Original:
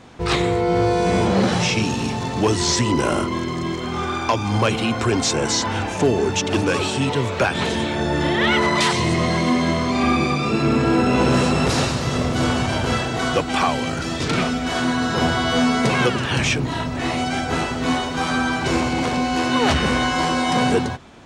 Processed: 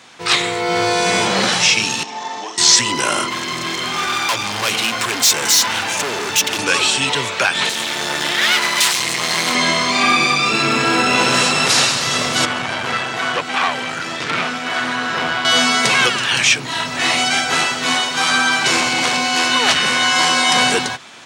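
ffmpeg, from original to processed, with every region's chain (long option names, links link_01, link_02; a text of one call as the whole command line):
ffmpeg -i in.wav -filter_complex "[0:a]asettb=1/sr,asplit=3[link_01][link_02][link_03];[link_01]atrim=end=2.034[link_04];[link_02]atrim=start=2.03:end=2.58,asetpts=PTS-STARTPTS,afade=type=in:duration=0.004:curve=qsin,afade=type=out:start_time=0.546:duration=0.004:curve=qsin,acrossover=split=1900|4600[link_05][link_06][link_07];[link_05]acompressor=threshold=-26dB:ratio=4[link_08];[link_06]acompressor=threshold=-48dB:ratio=4[link_09];[link_07]acompressor=threshold=-49dB:ratio=4[link_10];[link_08][link_09][link_10]amix=inputs=3:normalize=0,highpass=370,equalizer=frequency=490:width_type=q:width=4:gain=-4,equalizer=frequency=830:width_type=q:width=4:gain=4,equalizer=frequency=1400:width_type=q:width=4:gain=-7,equalizer=frequency=2600:width_type=q:width=4:gain=-8,equalizer=frequency=4400:width_type=q:width=4:gain=-7,lowpass=frequency=6200:width=0.5412,lowpass=frequency=6200:width=1.3066,asplit=2[link_11][link_12];[link_12]adelay=41,volume=-5dB[link_13];[link_11][link_13]amix=inputs=2:normalize=0,atrim=end_sample=24255[link_14];[link_03]atrim=start=2.576[link_15];[link_04][link_14]acrossfade=duration=0.004:curve1=hsin:curve2=qsin[link_16];[link_16][link_15]acrossfade=duration=0.004:curve1=qsin:curve2=hsin,asettb=1/sr,asplit=3[link_17][link_18][link_19];[link_17]atrim=end=3.304[link_20];[link_18]atrim=start=3.3:end=6.59,asetpts=PTS-STARTPTS,afade=type=in:duration=0.004:curve=qsin,afade=type=out:start_time=3.286:duration=0.004:curve=qsin,aeval=exprs='val(0)+0.0316*(sin(2*PI*60*n/s)+sin(2*PI*2*60*n/s)/2+sin(2*PI*3*60*n/s)/3+sin(2*PI*4*60*n/s)/4+sin(2*PI*5*60*n/s)/5)':channel_layout=same,volume=22.5dB,asoftclip=hard,volume=-22.5dB[link_21];[link_19]atrim=start=6.586[link_22];[link_20][link_21]acrossfade=duration=0.004:curve1=hsin:curve2=qsin[link_23];[link_23][link_22]acrossfade=duration=0.004:curve1=qsin:curve2=hsin,asettb=1/sr,asplit=3[link_24][link_25][link_26];[link_24]atrim=end=7.694[link_27];[link_25]atrim=start=7.69:end=9.55,asetpts=PTS-STARTPTS,afade=type=in:duration=0.004:curve=qsin,afade=type=out:start_time=1.856:duration=0.004:curve=qsin,highshelf=frequency=9100:gain=9.5,aeval=exprs='max(val(0),0)':channel_layout=same[link_28];[link_26]atrim=start=9.546[link_29];[link_27][link_28]acrossfade=duration=0.004:curve1=hsin:curve2=qsin[link_30];[link_30][link_29]acrossfade=duration=0.004:curve1=qsin:curve2=hsin,asettb=1/sr,asplit=3[link_31][link_32][link_33];[link_31]atrim=end=12.454[link_34];[link_32]atrim=start=12.45:end=15.45,asetpts=PTS-STARTPTS,afade=type=in:duration=0.004:curve=qsin,afade=type=out:start_time=2.996:duration=0.004:curve=qsin,acrossover=split=2600[link_35][link_36];[link_36]acompressor=threshold=-44dB:ratio=4:attack=1:release=60[link_37];[link_35][link_37]amix=inputs=2:normalize=0,aeval=exprs='(tanh(7.08*val(0)+0.65)-tanh(0.65))/7.08':channel_layout=same[link_38];[link_33]atrim=start=15.446[link_39];[link_34][link_38]acrossfade=duration=0.004:curve1=hsin:curve2=qsin[link_40];[link_40][link_39]acrossfade=duration=0.004:curve1=qsin:curve2=hsin,highpass=frequency=110:width=0.5412,highpass=frequency=110:width=1.3066,tiltshelf=frequency=840:gain=-10,dynaudnorm=framelen=180:gausssize=3:maxgain=5dB" out.wav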